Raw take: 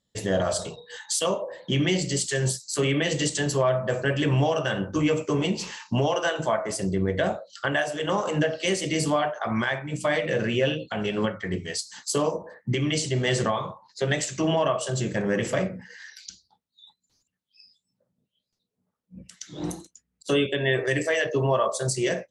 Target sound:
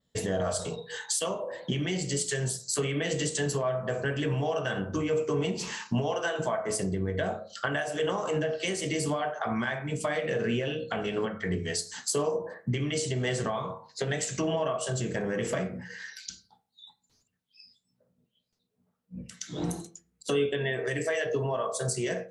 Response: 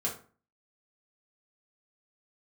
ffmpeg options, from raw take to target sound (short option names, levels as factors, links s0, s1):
-filter_complex "[0:a]acompressor=threshold=0.0282:ratio=4,adynamicequalizer=threshold=0.00251:dfrequency=9700:dqfactor=0.78:tfrequency=9700:tqfactor=0.78:attack=5:release=100:ratio=0.375:range=3:mode=boostabove:tftype=bell,asplit=2[s0][s1];[1:a]atrim=start_sample=2205,lowpass=3500[s2];[s1][s2]afir=irnorm=-1:irlink=0,volume=0.376[s3];[s0][s3]amix=inputs=2:normalize=0"